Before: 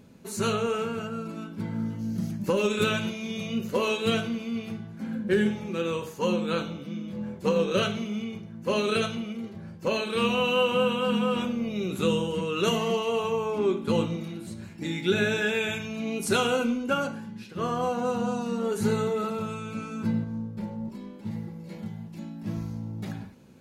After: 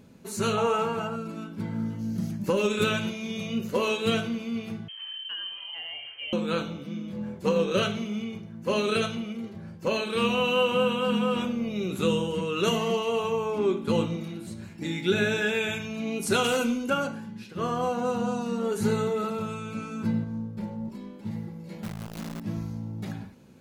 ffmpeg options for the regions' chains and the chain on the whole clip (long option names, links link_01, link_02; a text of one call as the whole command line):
ffmpeg -i in.wav -filter_complex "[0:a]asettb=1/sr,asplit=3[link_01][link_02][link_03];[link_01]atrim=end=0.574[link_04];[link_02]atrim=start=0.57:end=1.16,asetpts=PTS-STARTPTS,afade=type=in:duration=0.004:curve=qsin,afade=type=out:start_time=0.586:duration=0.004:curve=qsin,equalizer=frequency=890:width=2.2:gain=13,aecho=1:1:6.1:0.38,atrim=end_sample=26019[link_05];[link_03]atrim=start=1.156[link_06];[link_04][link_05]acrossfade=duration=0.004:curve1=hsin:curve2=qsin[link_07];[link_07][link_06]acrossfade=duration=0.004:curve1=qsin:curve2=hsin,asettb=1/sr,asplit=3[link_08][link_09][link_10];[link_08]atrim=end=4.884[link_11];[link_09]atrim=start=4.88:end=6.33,asetpts=PTS-STARTPTS,afade=type=in:duration=0.004:curve=qsin,afade=type=out:start_time=1.446:duration=0.004:curve=qsin,lowpass=frequency=2800:width_type=q:width=0.5098,lowpass=frequency=2800:width_type=q:width=0.6013,lowpass=frequency=2800:width_type=q:width=0.9,lowpass=frequency=2800:width_type=q:width=2.563,afreqshift=-3300,acompressor=threshold=-37dB:ratio=3:attack=3.2:release=140:knee=1:detection=peak[link_12];[link_10]atrim=start=6.326[link_13];[link_11][link_12]acrossfade=duration=0.004:curve1=hsin:curve2=qsin[link_14];[link_14][link_13]acrossfade=duration=0.004:curve1=qsin:curve2=hsin,asettb=1/sr,asplit=3[link_15][link_16][link_17];[link_15]atrim=end=16.444[link_18];[link_16]atrim=start=16.44:end=16.9,asetpts=PTS-STARTPTS,afade=type=in:duration=0.004:curve=qsin,afade=type=out:start_time=0.456:duration=0.004:curve=qsin,highshelf=frequency=4300:gain=10.5,volume=20dB,asoftclip=hard,volume=-20dB[link_19];[link_17]atrim=start=16.896[link_20];[link_18][link_19]acrossfade=duration=0.004:curve1=hsin:curve2=qsin[link_21];[link_21][link_20]acrossfade=duration=0.004:curve1=qsin:curve2=hsin,asettb=1/sr,asplit=3[link_22][link_23][link_24];[link_22]atrim=end=21.834[link_25];[link_23]atrim=start=21.83:end=22.4,asetpts=PTS-STARTPTS,afade=type=in:duration=0.004:curve=qsin,afade=type=out:start_time=0.566:duration=0.004:curve=qsin,asubboost=boost=11.5:cutoff=180,acrusher=bits=7:dc=4:mix=0:aa=0.000001[link_26];[link_24]atrim=start=22.396[link_27];[link_25][link_26]acrossfade=duration=0.004:curve1=hsin:curve2=qsin[link_28];[link_28][link_27]acrossfade=duration=0.004:curve1=qsin:curve2=hsin" out.wav